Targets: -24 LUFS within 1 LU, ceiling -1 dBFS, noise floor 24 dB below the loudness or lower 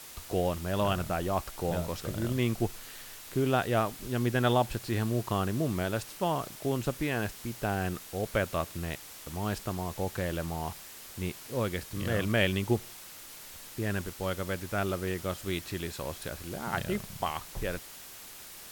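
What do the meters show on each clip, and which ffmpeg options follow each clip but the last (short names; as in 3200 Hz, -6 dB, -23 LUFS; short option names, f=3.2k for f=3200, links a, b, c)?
noise floor -47 dBFS; noise floor target -56 dBFS; loudness -32.0 LUFS; peak -13.0 dBFS; loudness target -24.0 LUFS
-> -af "afftdn=nr=9:nf=-47"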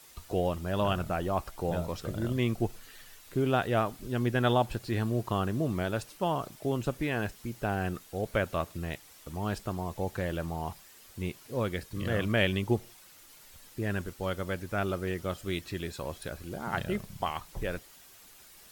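noise floor -55 dBFS; noise floor target -57 dBFS
-> -af "afftdn=nr=6:nf=-55"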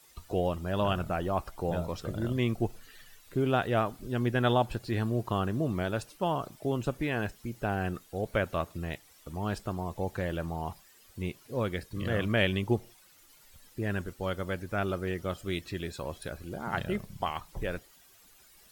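noise floor -59 dBFS; loudness -32.5 LUFS; peak -13.0 dBFS; loudness target -24.0 LUFS
-> -af "volume=8.5dB"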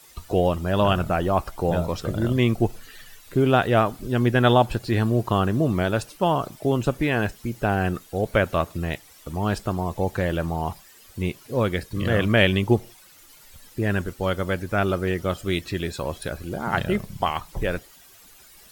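loudness -24.0 LUFS; peak -4.5 dBFS; noise floor -51 dBFS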